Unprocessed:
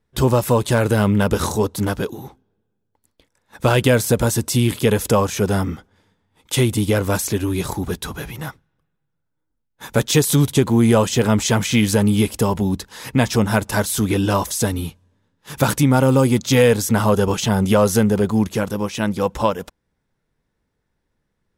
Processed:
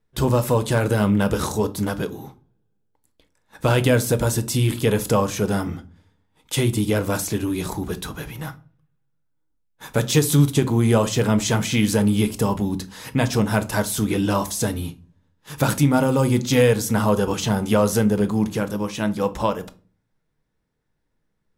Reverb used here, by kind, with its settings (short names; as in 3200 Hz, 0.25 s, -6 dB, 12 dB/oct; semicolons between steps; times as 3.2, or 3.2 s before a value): shoebox room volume 240 m³, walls furnished, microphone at 0.55 m; gain -3.5 dB